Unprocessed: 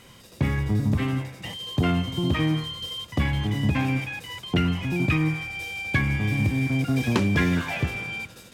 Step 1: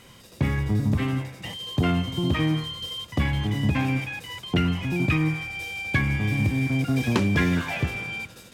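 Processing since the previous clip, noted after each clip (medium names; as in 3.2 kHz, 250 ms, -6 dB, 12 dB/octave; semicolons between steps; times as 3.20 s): no audible change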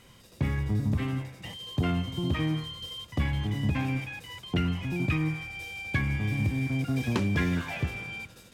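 bass shelf 82 Hz +6 dB; trim -6 dB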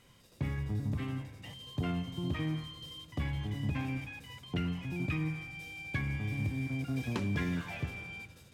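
simulated room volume 1900 m³, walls mixed, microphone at 0.36 m; trim -7 dB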